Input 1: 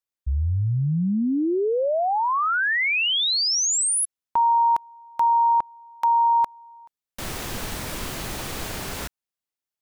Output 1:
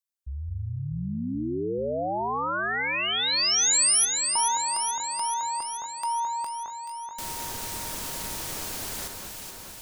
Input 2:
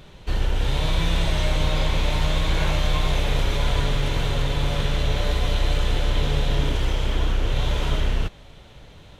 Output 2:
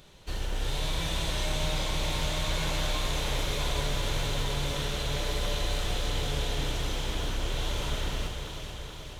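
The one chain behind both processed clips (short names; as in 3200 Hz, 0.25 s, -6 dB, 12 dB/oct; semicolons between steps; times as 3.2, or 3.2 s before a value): tone controls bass -3 dB, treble +9 dB; echo with dull and thin repeats by turns 0.215 s, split 2000 Hz, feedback 82%, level -4 dB; gain -8 dB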